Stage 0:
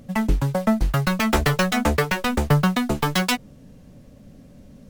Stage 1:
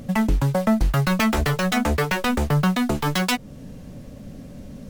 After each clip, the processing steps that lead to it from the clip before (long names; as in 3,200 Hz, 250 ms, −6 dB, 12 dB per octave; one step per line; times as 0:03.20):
in parallel at +3 dB: downward compressor, threshold −30 dBFS, peak gain reduction 16.5 dB
on the sum: brickwall limiter −11 dBFS, peak gain reduction 8.5 dB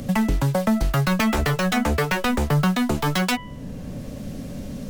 hum removal 330.3 Hz, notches 10
multiband upward and downward compressor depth 40%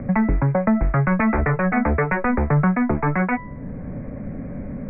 Butterworth low-pass 2,300 Hz 96 dB per octave
level +2 dB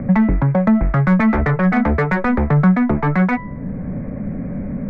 parametric band 190 Hz +5.5 dB 0.54 octaves
in parallel at −5 dB: soft clipping −21 dBFS, distortion −8 dB